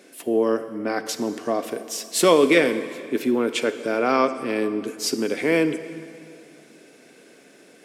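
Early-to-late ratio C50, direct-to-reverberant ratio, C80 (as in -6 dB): 11.5 dB, 11.0 dB, 12.5 dB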